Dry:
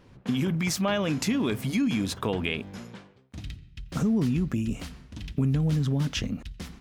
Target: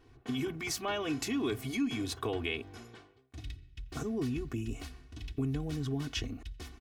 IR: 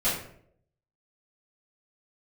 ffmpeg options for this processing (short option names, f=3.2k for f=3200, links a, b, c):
-af "aecho=1:1:2.7:0.93,volume=-8dB"